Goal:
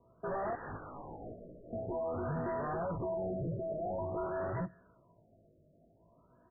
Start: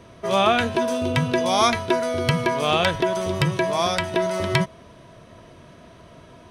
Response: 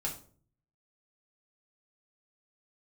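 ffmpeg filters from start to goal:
-filter_complex "[0:a]afwtdn=0.0708,equalizer=f=3300:w=0.41:g=3,acrossover=split=680|990[s0][s1][s2];[s2]acompressor=threshold=0.0158:ratio=6[s3];[s0][s1][s3]amix=inputs=3:normalize=0,asettb=1/sr,asplit=3[s4][s5][s6];[s4]atrim=end=0.534[s7];[s5]atrim=start=0.53:end=1.73,asetpts=PTS-STARTPTS,afade=t=in:d=0.004:c=qsin,afade=t=out:st=1.196:d=0.004:c=qsin,aeval=exprs='0.0211*(abs(mod(val(0)/0.0211+3,4)-2)-1)':c=same[s8];[s6]atrim=start=1.726[s9];[s7][s8]acrossfade=d=0.004:c1=hsin:c2=qsin[s10];[s10][s9]acrossfade=d=0.004:c1=qsin:c2=hsin,flanger=delay=16.5:depth=3.3:speed=0.62,asoftclip=type=tanh:threshold=0.0188,acrossover=split=2800[s11][s12];[s12]adelay=370[s13];[s11][s13]amix=inputs=2:normalize=0,asplit=2[s14][s15];[1:a]atrim=start_sample=2205[s16];[s15][s16]afir=irnorm=-1:irlink=0,volume=0.0631[s17];[s14][s17]amix=inputs=2:normalize=0,afftfilt=real='re*lt(b*sr/1024,660*pow(2000/660,0.5+0.5*sin(2*PI*0.49*pts/sr)))':imag='im*lt(b*sr/1024,660*pow(2000/660,0.5+0.5*sin(2*PI*0.49*pts/sr)))':win_size=1024:overlap=0.75"

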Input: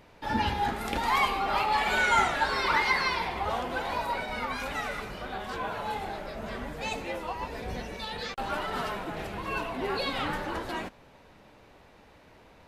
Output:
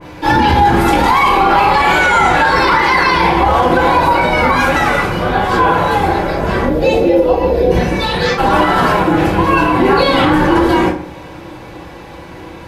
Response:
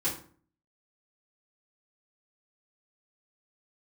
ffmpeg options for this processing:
-filter_complex "[0:a]asettb=1/sr,asplit=3[s0][s1][s2];[s0]atrim=end=6.654[s3];[s1]atrim=start=6.65:end=7.71,asetpts=PTS-STARTPTS,afade=t=in:d=0.004:c=qsin,afade=t=out:st=1.056:d=0.004:c=qsin,equalizer=f=125:t=o:w=1:g=-6,equalizer=f=500:t=o:w=1:g=9,equalizer=f=1000:t=o:w=1:g=-12,equalizer=f=2000:t=o:w=1:g=-8,equalizer=f=8000:t=o:w=1:g=-12[s4];[s2]atrim=start=7.706[s5];[s3][s4]acrossfade=d=0.004:c1=hsin:c2=qsin[s6];[s6][s5]acrossfade=d=0.004:c1=qsin:c2=hsin[s7];[1:a]atrim=start_sample=2205[s8];[s7][s8]afir=irnorm=-1:irlink=0,alimiter=level_in=6.68:limit=0.891:release=50:level=0:latency=1,adynamicequalizer=threshold=0.0562:dfrequency=2300:dqfactor=0.7:tfrequency=2300:tqfactor=0.7:attack=5:release=100:ratio=0.375:range=2:mode=cutabove:tftype=highshelf,volume=0.891"

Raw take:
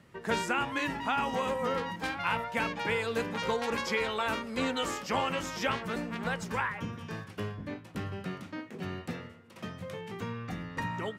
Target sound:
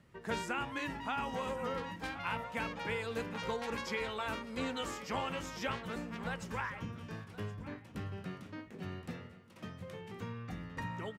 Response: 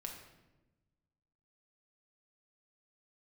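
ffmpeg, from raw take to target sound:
-af "lowshelf=f=86:g=9.5,aecho=1:1:1070:0.15,volume=0.447"

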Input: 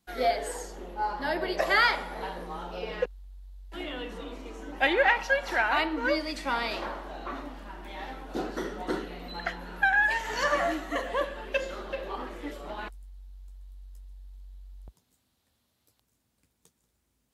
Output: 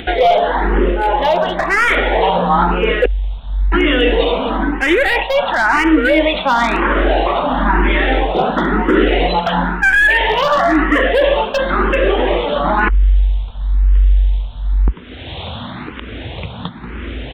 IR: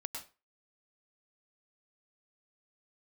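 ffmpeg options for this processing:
-filter_complex "[0:a]asplit=2[s0][s1];[s1]acompressor=mode=upward:threshold=0.0398:ratio=2.5,volume=1.33[s2];[s0][s2]amix=inputs=2:normalize=0,aresample=8000,aresample=44100,aeval=exprs='clip(val(0),-1,0.141)':c=same,areverse,acompressor=threshold=0.0316:ratio=8,areverse,alimiter=level_in=18.8:limit=0.891:release=50:level=0:latency=1,asplit=2[s3][s4];[s4]afreqshift=0.99[s5];[s3][s5]amix=inputs=2:normalize=1,volume=0.891"

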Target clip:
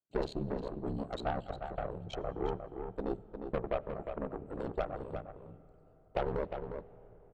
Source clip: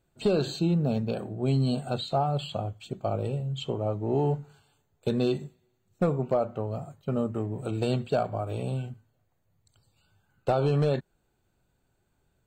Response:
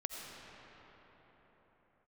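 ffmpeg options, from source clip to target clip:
-filter_complex "[0:a]highpass=100,afwtdn=0.0112,bass=f=250:g=-7,treble=f=4000:g=-4,aeval=exprs='0.188*(cos(1*acos(clip(val(0)/0.188,-1,1)))-cos(1*PI/2))+0.0299*(cos(6*acos(clip(val(0)/0.188,-1,1)))-cos(6*PI/2))+0.00188*(cos(8*acos(clip(val(0)/0.188,-1,1)))-cos(8*PI/2))':c=same,aeval=exprs='val(0)*sin(2*PI*34*n/s)':c=same,atempo=1.7,asplit=2[s0][s1];[s1]adelay=355.7,volume=0.447,highshelf=f=4000:g=-8[s2];[s0][s2]amix=inputs=2:normalize=0,asplit=2[s3][s4];[1:a]atrim=start_sample=2205,lowshelf=f=290:g=9[s5];[s4][s5]afir=irnorm=-1:irlink=0,volume=0.112[s6];[s3][s6]amix=inputs=2:normalize=0,volume=0.562"

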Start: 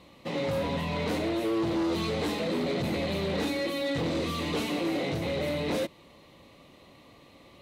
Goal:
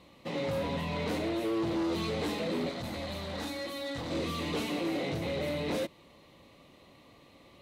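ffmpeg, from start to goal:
-filter_complex "[0:a]asettb=1/sr,asplit=3[s0][s1][s2];[s0]atrim=end=2.694[s3];[s1]atrim=start=2.69:end=4.11,asetpts=PTS-STARTPTS,afade=t=in:d=0.004:c=qsin,afade=t=out:st=1.416:d=0.004:c=qsin,equalizer=f=160:t=o:w=0.67:g=-9,equalizer=f=400:t=o:w=0.67:g=-12,equalizer=f=2500:t=o:w=0.67:g=-6[s4];[s2]atrim=start=4.106[s5];[s3][s4]acrossfade=d=0.004:c1=hsin:c2=qsin[s6];[s6][s5]acrossfade=d=0.004:c1=qsin:c2=hsin,volume=0.708"

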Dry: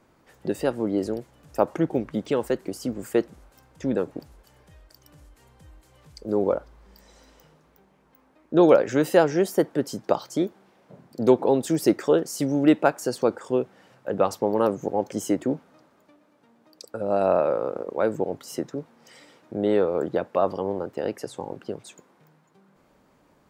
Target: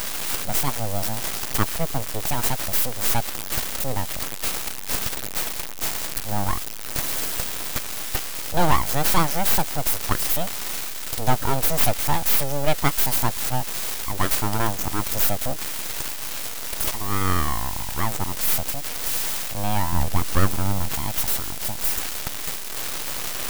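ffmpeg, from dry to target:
-filter_complex "[0:a]aeval=exprs='val(0)+0.5*0.0398*sgn(val(0))':c=same,aemphasis=mode=production:type=75kf,aeval=exprs='abs(val(0))':c=same,asettb=1/sr,asplit=3[s0][s1][s2];[s0]atrim=end=19.924[s3];[s1]atrim=start=19.92:end=20.92,asetpts=PTS-STARTPTS,afade=t=in:d=0.004:c=qsin,afade=t=out:st=0.996:d=0.004:c=qsin,lowshelf=f=370:g=7[s4];[s2]atrim=start=20.916[s5];[s3][s4]acrossfade=d=0.004:c1=hsin:c2=qsin[s6];[s6][s5]acrossfade=d=0.004:c1=qsin:c2=hsin"

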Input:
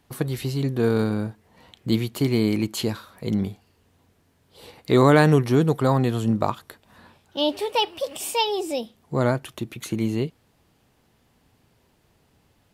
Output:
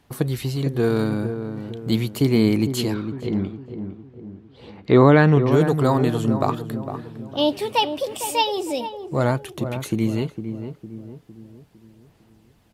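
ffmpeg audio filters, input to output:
-filter_complex "[0:a]asettb=1/sr,asplit=3[s0][s1][s2];[s0]atrim=end=2.944[s3];[s1]atrim=start=2.94:end=5.52,asetpts=PTS-STARTPTS,afade=t=in:d=0.004:c=qsin,afade=t=out:st=2.576:d=0.004:c=qsin,lowpass=3000[s4];[s2]atrim=start=5.516[s5];[s3][s4]acrossfade=d=0.004:c1=hsin:c2=qsin[s6];[s6][s5]acrossfade=d=0.004:c1=qsin:c2=hsin,aphaser=in_gain=1:out_gain=1:delay=3.4:decay=0.26:speed=0.41:type=sinusoidal,asplit=2[s7][s8];[s8]adelay=456,lowpass=f=1000:p=1,volume=0.398,asplit=2[s9][s10];[s10]adelay=456,lowpass=f=1000:p=1,volume=0.48,asplit=2[s11][s12];[s12]adelay=456,lowpass=f=1000:p=1,volume=0.48,asplit=2[s13][s14];[s14]adelay=456,lowpass=f=1000:p=1,volume=0.48,asplit=2[s15][s16];[s16]adelay=456,lowpass=f=1000:p=1,volume=0.48,asplit=2[s17][s18];[s18]adelay=456,lowpass=f=1000:p=1,volume=0.48[s19];[s7][s9][s11][s13][s15][s17][s19]amix=inputs=7:normalize=0,volume=1.12"

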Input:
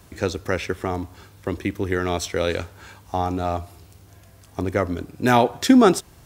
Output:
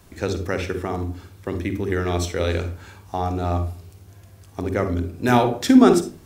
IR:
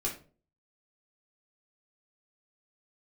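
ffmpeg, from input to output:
-filter_complex "[0:a]asplit=2[s0][s1];[1:a]atrim=start_sample=2205,lowshelf=f=360:g=9,adelay=46[s2];[s1][s2]afir=irnorm=-1:irlink=0,volume=0.224[s3];[s0][s3]amix=inputs=2:normalize=0,volume=0.794"

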